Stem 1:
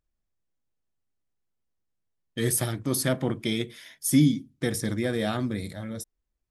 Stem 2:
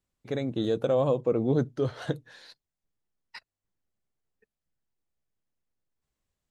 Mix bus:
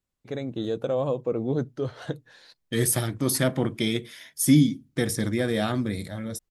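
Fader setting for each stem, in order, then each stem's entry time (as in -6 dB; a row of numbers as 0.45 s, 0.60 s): +2.0 dB, -1.5 dB; 0.35 s, 0.00 s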